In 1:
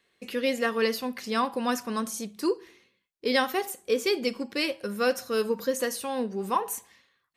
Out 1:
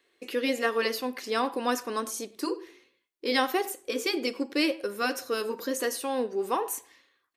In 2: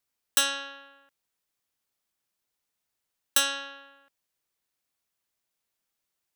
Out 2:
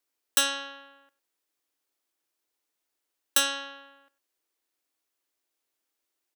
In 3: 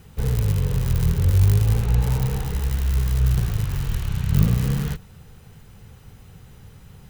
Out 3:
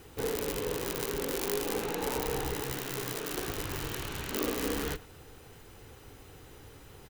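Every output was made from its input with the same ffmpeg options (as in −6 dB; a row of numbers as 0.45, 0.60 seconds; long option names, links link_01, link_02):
-filter_complex "[0:a]afftfilt=real='re*lt(hypot(re,im),0.562)':imag='im*lt(hypot(re,im),0.562)':win_size=1024:overlap=0.75,lowshelf=frequency=240:width_type=q:width=3:gain=-7.5,asplit=2[link_01][link_02];[link_02]adelay=100,highpass=300,lowpass=3400,asoftclip=type=hard:threshold=-17.5dB,volume=-20dB[link_03];[link_01][link_03]amix=inputs=2:normalize=0"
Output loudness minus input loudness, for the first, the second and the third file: −1.0, 0.0, −12.0 LU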